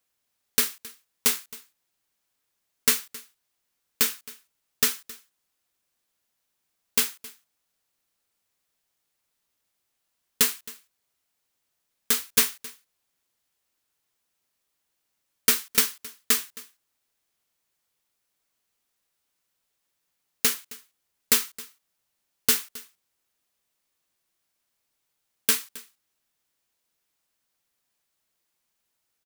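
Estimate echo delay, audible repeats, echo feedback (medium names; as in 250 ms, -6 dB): 267 ms, 1, no regular repeats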